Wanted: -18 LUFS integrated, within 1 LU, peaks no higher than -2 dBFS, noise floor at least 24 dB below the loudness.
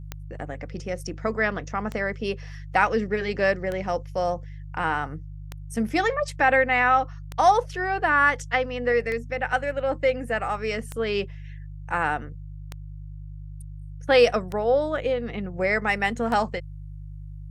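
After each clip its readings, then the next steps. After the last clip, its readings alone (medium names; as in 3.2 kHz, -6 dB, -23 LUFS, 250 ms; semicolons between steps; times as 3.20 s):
clicks found 10; hum 50 Hz; highest harmonic 150 Hz; hum level -35 dBFS; loudness -24.5 LUFS; peak level -6.0 dBFS; loudness target -18.0 LUFS
-> de-click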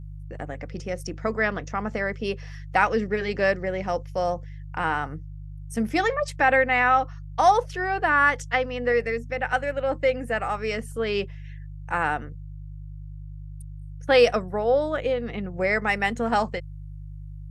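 clicks found 0; hum 50 Hz; highest harmonic 150 Hz; hum level -35 dBFS
-> de-hum 50 Hz, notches 3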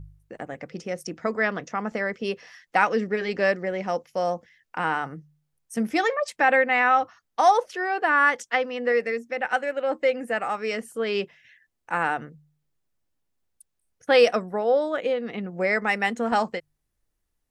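hum not found; loudness -24.5 LUFS; peak level -6.0 dBFS; loudness target -18.0 LUFS
-> trim +6.5 dB; peak limiter -2 dBFS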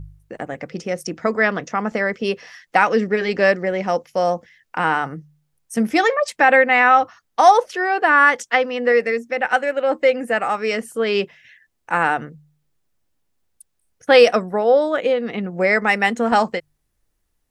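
loudness -18.0 LUFS; peak level -2.0 dBFS; noise floor -71 dBFS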